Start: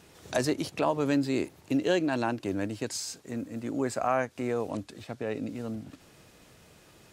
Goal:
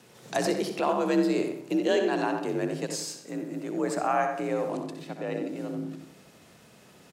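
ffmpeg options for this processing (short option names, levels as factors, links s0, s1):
-filter_complex "[0:a]asplit=2[s0][s1];[s1]adelay=91,lowpass=f=1800:p=1,volume=0.562,asplit=2[s2][s3];[s3]adelay=91,lowpass=f=1800:p=1,volume=0.4,asplit=2[s4][s5];[s5]adelay=91,lowpass=f=1800:p=1,volume=0.4,asplit=2[s6][s7];[s7]adelay=91,lowpass=f=1800:p=1,volume=0.4,asplit=2[s8][s9];[s9]adelay=91,lowpass=f=1800:p=1,volume=0.4[s10];[s2][s4][s6][s8][s10]amix=inputs=5:normalize=0[s11];[s0][s11]amix=inputs=2:normalize=0,afreqshift=49,asplit=2[s12][s13];[s13]aecho=0:1:63|126|189|252:0.316|0.13|0.0532|0.0218[s14];[s12][s14]amix=inputs=2:normalize=0"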